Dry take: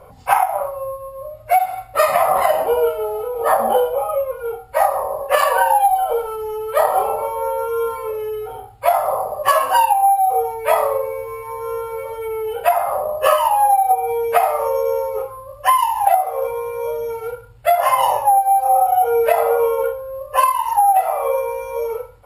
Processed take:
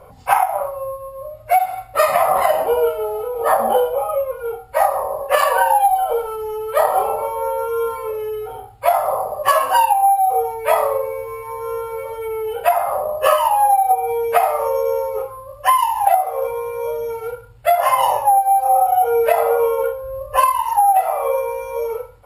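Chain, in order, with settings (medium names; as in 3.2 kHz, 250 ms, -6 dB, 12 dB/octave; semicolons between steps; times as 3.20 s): 20.03–20.63 s: bass shelf 170 Hz +10.5 dB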